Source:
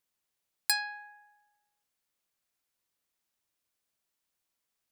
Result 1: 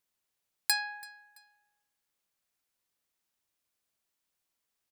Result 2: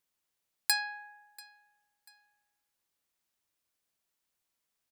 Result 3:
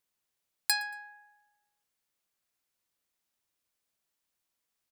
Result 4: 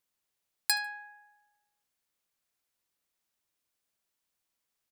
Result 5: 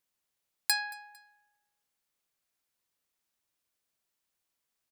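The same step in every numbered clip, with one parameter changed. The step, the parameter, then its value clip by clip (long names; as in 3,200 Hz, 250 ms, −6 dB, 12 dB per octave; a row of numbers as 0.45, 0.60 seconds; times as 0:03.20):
repeating echo, delay time: 334, 689, 115, 74, 226 milliseconds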